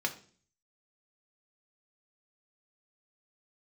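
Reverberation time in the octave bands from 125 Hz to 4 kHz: 0.70, 0.60, 0.50, 0.40, 0.40, 0.45 s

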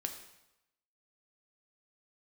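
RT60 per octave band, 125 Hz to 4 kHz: 0.90, 0.85, 0.90, 0.95, 0.85, 0.80 s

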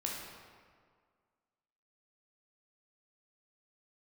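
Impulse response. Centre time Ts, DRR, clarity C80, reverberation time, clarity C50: 86 ms, -2.5 dB, 3.0 dB, 1.9 s, 0.5 dB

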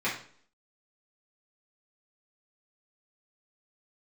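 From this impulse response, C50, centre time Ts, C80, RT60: 6.5 dB, 30 ms, 11.5 dB, 0.55 s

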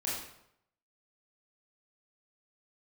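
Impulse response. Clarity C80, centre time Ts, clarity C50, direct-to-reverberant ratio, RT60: 5.0 dB, 60 ms, 1.0 dB, -7.0 dB, 0.75 s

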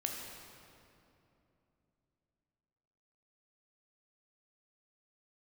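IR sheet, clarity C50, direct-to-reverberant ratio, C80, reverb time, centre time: 2.0 dB, 0.0 dB, 3.0 dB, 2.9 s, 95 ms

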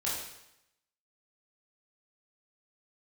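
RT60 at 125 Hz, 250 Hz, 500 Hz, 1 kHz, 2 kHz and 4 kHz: 0.90, 0.80, 0.80, 0.85, 0.85, 0.80 s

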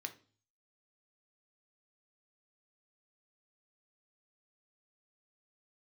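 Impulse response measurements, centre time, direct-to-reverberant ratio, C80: 7 ms, 6.0 dB, 20.5 dB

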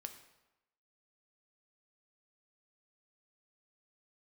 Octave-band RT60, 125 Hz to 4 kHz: 0.85, 0.90, 0.95, 1.0, 0.90, 0.75 s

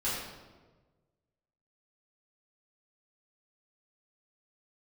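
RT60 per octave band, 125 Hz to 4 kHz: 1.8, 1.5, 1.5, 1.2, 1.0, 0.85 s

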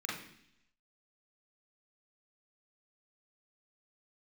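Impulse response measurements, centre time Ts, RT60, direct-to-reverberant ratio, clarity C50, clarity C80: 50 ms, 0.70 s, -5.5 dB, 3.0 dB, 7.5 dB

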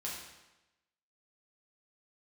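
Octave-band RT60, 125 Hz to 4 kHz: 1.0, 1.0, 1.0, 1.0, 0.95, 0.90 s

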